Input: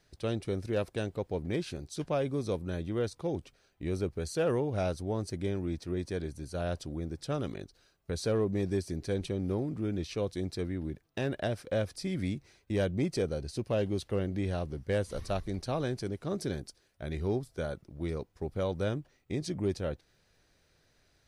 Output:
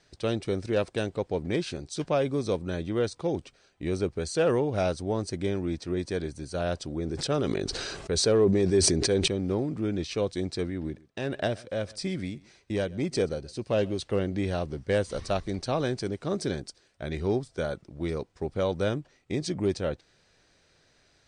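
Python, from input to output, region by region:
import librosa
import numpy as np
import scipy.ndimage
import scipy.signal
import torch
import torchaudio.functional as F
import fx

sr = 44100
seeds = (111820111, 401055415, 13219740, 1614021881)

y = fx.chain(x, sr, fx.peak_eq(hz=400.0, db=5.0, octaves=0.36),
    fx.sustainer(db_per_s=23.0), at=(6.96, 9.28))
y = fx.chain(y, sr, fx.tremolo_shape(shape='triangle', hz=1.7, depth_pct=55),
    fx.echo_single(ms=128, db=-23.0), at=(10.7, 13.99))
y = scipy.signal.sosfilt(scipy.signal.ellip(4, 1.0, 40, 8900.0, 'lowpass', fs=sr, output='sos'), y)
y = fx.low_shelf(y, sr, hz=120.0, db=-7.0)
y = F.gain(torch.from_numpy(y), 6.5).numpy()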